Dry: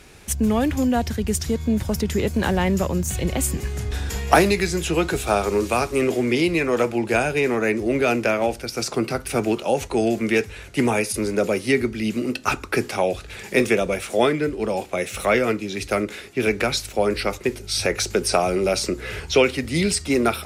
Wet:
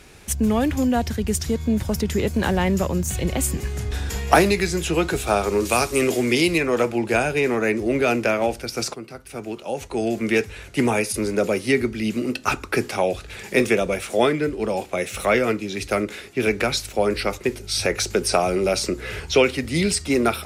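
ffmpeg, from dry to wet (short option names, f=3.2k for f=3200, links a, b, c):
-filter_complex "[0:a]asettb=1/sr,asplit=3[a][b][c];[a]atrim=end=5.654[d];[b]atrim=start=5.65:end=6.58,asetpts=PTS-STARTPTS,afade=t=in:d=0.004:c=qsin,afade=t=out:st=0.926:d=0.004:c=qsin,highshelf=f=3.4k:g=9.5[e];[c]atrim=start=6.576[f];[d][e]acrossfade=d=0.004:c1=hsin:c2=qsin[g];[g][f]acrossfade=d=0.004:c1=qsin:c2=hsin,asplit=2[h][i];[h]atrim=end=8.94,asetpts=PTS-STARTPTS,afade=t=out:st=8.936:d=0.004:c=hsin:silence=0.211349[j];[i]atrim=start=8.94,asetpts=PTS-STARTPTS,afade=t=in:d=1.39:c=qua:silence=0.211349[k];[j][k]concat=n=2:v=0:a=1"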